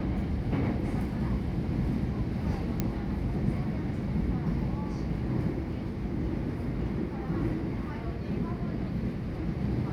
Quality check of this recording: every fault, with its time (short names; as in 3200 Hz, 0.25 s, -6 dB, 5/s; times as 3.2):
2.8 pop -14 dBFS